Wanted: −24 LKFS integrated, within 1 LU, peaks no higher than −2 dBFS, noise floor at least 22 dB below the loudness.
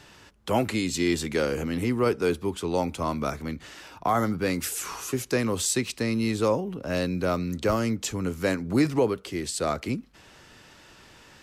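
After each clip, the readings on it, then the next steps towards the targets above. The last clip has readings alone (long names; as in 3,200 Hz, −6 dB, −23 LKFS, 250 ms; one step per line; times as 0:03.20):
integrated loudness −27.0 LKFS; sample peak −12.5 dBFS; target loudness −24.0 LKFS
→ level +3 dB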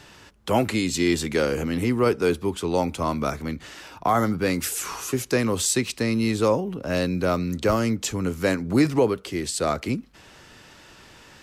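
integrated loudness −24.0 LKFS; sample peak −9.5 dBFS; background noise floor −50 dBFS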